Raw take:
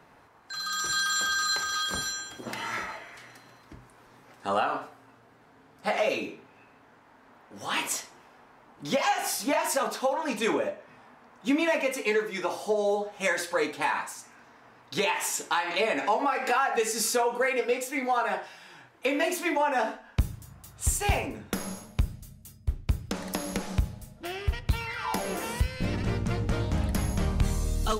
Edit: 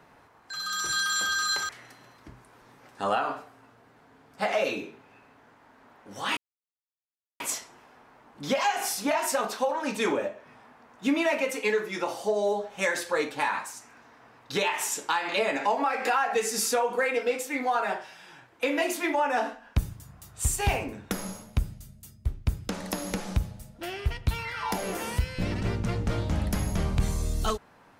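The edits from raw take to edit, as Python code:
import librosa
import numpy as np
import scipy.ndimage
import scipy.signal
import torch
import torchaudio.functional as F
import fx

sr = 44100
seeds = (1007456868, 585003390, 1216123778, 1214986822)

y = fx.edit(x, sr, fx.cut(start_s=1.69, length_s=1.45),
    fx.insert_silence(at_s=7.82, length_s=1.03), tone=tone)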